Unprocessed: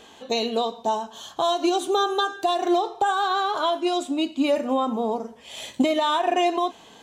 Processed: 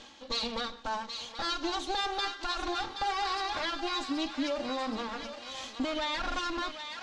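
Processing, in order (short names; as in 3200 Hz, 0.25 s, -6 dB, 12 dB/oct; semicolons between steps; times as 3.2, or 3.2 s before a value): minimum comb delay 3.6 ms; limiter -18 dBFS, peak gain reduction 6.5 dB; synth low-pass 5200 Hz, resonance Q 1.8; thinning echo 0.775 s, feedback 61%, high-pass 1100 Hz, level -7 dB; reverse; upward compressor, threshold -31 dBFS; reverse; gain -6.5 dB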